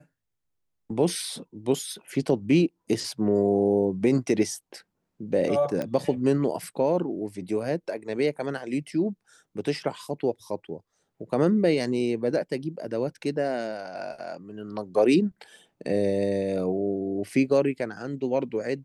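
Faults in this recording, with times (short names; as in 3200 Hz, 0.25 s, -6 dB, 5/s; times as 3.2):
5.82 pop -17 dBFS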